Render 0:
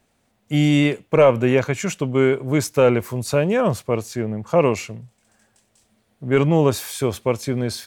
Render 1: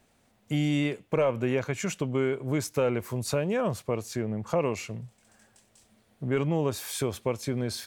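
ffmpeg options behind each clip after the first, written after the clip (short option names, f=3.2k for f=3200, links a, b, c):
-af "acompressor=threshold=-31dB:ratio=2"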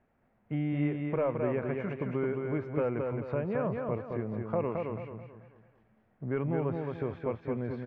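-filter_complex "[0:a]lowpass=f=2k:w=0.5412,lowpass=f=2k:w=1.3066,asplit=2[a][b];[b]aecho=0:1:218|436|654|872|1090:0.631|0.24|0.0911|0.0346|0.0132[c];[a][c]amix=inputs=2:normalize=0,volume=-5dB"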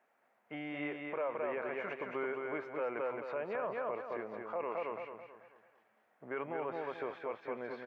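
-af "highpass=630,alimiter=level_in=7.5dB:limit=-24dB:level=0:latency=1:release=24,volume=-7.5dB,volume=3dB"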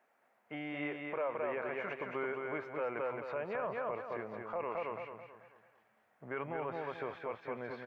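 -af "asubboost=boost=3.5:cutoff=150,volume=1dB"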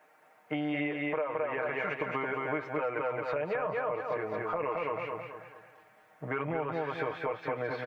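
-af "aecho=1:1:6.5:0.82,acompressor=threshold=-38dB:ratio=6,volume=9dB"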